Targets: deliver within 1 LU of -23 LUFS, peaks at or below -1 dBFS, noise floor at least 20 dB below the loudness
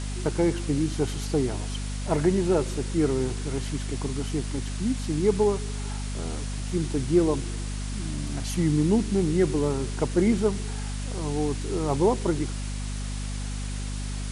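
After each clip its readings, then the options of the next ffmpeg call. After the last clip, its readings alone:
hum 50 Hz; highest harmonic 250 Hz; hum level -29 dBFS; noise floor -31 dBFS; noise floor target -47 dBFS; loudness -27.0 LUFS; peak level -9.5 dBFS; loudness target -23.0 LUFS
-> -af "bandreject=f=50:t=h:w=4,bandreject=f=100:t=h:w=4,bandreject=f=150:t=h:w=4,bandreject=f=200:t=h:w=4,bandreject=f=250:t=h:w=4"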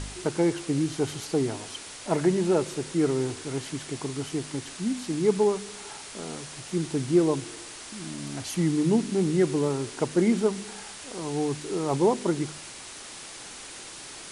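hum not found; noise floor -42 dBFS; noise floor target -48 dBFS
-> -af "afftdn=nr=6:nf=-42"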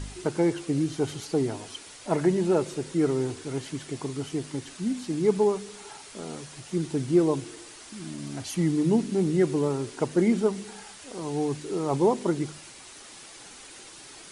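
noise floor -47 dBFS; loudness -27.0 LUFS; peak level -10.5 dBFS; loudness target -23.0 LUFS
-> -af "volume=1.58"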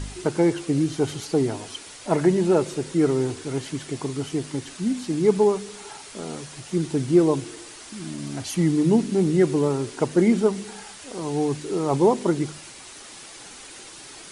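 loudness -23.0 LUFS; peak level -6.5 dBFS; noise floor -43 dBFS

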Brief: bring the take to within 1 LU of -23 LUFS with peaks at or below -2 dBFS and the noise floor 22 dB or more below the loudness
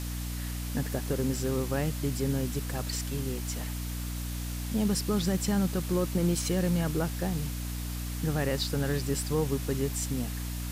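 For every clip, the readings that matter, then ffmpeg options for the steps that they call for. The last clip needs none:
hum 60 Hz; highest harmonic 300 Hz; hum level -32 dBFS; noise floor -35 dBFS; noise floor target -53 dBFS; loudness -30.5 LUFS; peak level -16.0 dBFS; loudness target -23.0 LUFS
-> -af "bandreject=f=60:t=h:w=6,bandreject=f=120:t=h:w=6,bandreject=f=180:t=h:w=6,bandreject=f=240:t=h:w=6,bandreject=f=300:t=h:w=6"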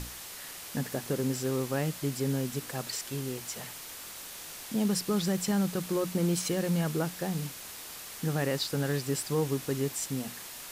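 hum not found; noise floor -44 dBFS; noise floor target -54 dBFS
-> -af "afftdn=nr=10:nf=-44"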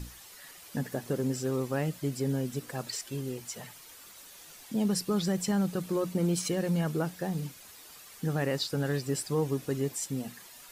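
noise floor -51 dBFS; noise floor target -54 dBFS
-> -af "afftdn=nr=6:nf=-51"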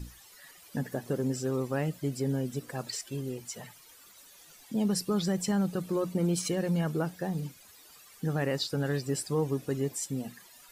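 noise floor -55 dBFS; loudness -32.0 LUFS; peak level -17.5 dBFS; loudness target -23.0 LUFS
-> -af "volume=2.82"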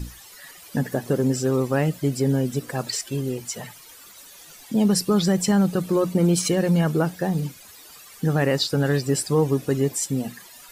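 loudness -23.0 LUFS; peak level -8.5 dBFS; noise floor -46 dBFS

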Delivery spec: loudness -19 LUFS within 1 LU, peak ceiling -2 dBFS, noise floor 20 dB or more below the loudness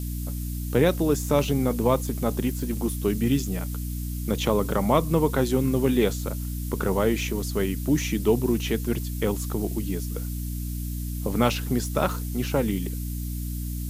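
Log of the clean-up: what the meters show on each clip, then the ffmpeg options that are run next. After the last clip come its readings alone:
hum 60 Hz; highest harmonic 300 Hz; hum level -28 dBFS; noise floor -31 dBFS; noise floor target -46 dBFS; loudness -26.0 LUFS; peak level -5.0 dBFS; loudness target -19.0 LUFS
-> -af "bandreject=f=60:t=h:w=6,bandreject=f=120:t=h:w=6,bandreject=f=180:t=h:w=6,bandreject=f=240:t=h:w=6,bandreject=f=300:t=h:w=6"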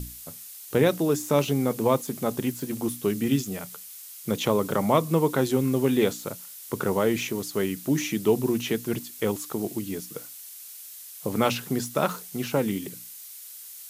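hum not found; noise floor -43 dBFS; noise floor target -46 dBFS
-> -af "afftdn=nr=6:nf=-43"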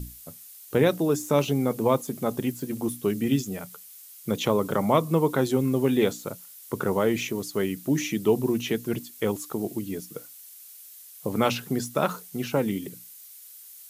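noise floor -47 dBFS; loudness -26.5 LUFS; peak level -6.5 dBFS; loudness target -19.0 LUFS
-> -af "volume=2.37,alimiter=limit=0.794:level=0:latency=1"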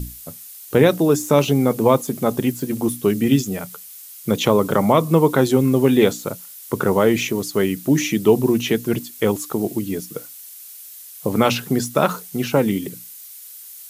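loudness -19.0 LUFS; peak level -2.0 dBFS; noise floor -40 dBFS

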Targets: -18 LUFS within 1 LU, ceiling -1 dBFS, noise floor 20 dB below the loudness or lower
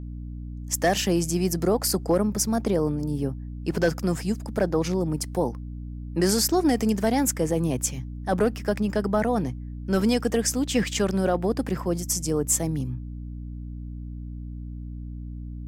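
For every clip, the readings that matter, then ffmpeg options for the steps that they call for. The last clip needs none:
hum 60 Hz; highest harmonic 300 Hz; hum level -33 dBFS; loudness -25.0 LUFS; peak level -9.0 dBFS; loudness target -18.0 LUFS
-> -af "bandreject=f=60:t=h:w=6,bandreject=f=120:t=h:w=6,bandreject=f=180:t=h:w=6,bandreject=f=240:t=h:w=6,bandreject=f=300:t=h:w=6"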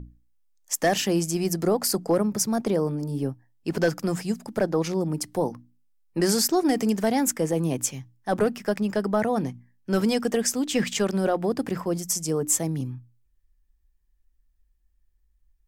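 hum not found; loudness -25.5 LUFS; peak level -10.0 dBFS; loudness target -18.0 LUFS
-> -af "volume=2.37"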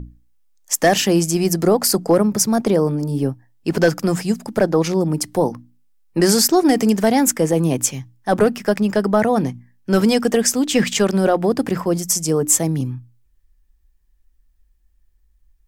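loudness -18.0 LUFS; peak level -2.5 dBFS; noise floor -59 dBFS

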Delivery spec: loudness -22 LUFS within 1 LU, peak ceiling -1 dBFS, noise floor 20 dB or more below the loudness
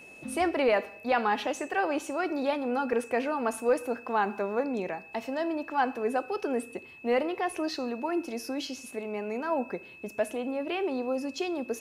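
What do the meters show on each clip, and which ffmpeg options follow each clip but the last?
steady tone 2.6 kHz; tone level -48 dBFS; loudness -30.5 LUFS; peak level -15.5 dBFS; loudness target -22.0 LUFS
-> -af "bandreject=f=2600:w=30"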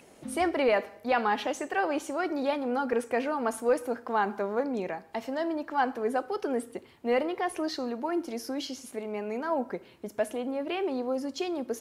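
steady tone not found; loudness -30.5 LUFS; peak level -16.0 dBFS; loudness target -22.0 LUFS
-> -af "volume=2.66"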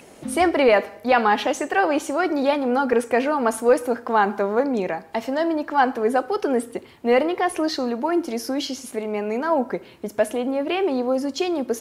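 loudness -22.0 LUFS; peak level -7.5 dBFS; noise floor -46 dBFS

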